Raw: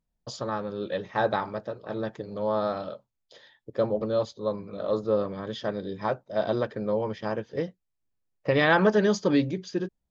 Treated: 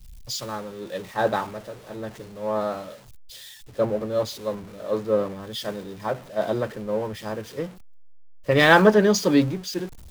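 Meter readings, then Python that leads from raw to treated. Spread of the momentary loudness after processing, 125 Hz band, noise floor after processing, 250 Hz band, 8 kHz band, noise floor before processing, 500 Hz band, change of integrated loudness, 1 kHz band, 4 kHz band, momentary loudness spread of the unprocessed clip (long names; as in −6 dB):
18 LU, +3.5 dB, −45 dBFS, +3.5 dB, can't be measured, −80 dBFS, +3.0 dB, +4.0 dB, +3.5 dB, +7.5 dB, 13 LU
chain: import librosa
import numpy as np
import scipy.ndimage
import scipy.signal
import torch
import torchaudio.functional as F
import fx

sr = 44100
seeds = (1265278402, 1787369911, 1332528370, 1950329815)

y = x + 0.5 * 10.0 ** (-34.5 / 20.0) * np.sign(x)
y = fx.band_widen(y, sr, depth_pct=100)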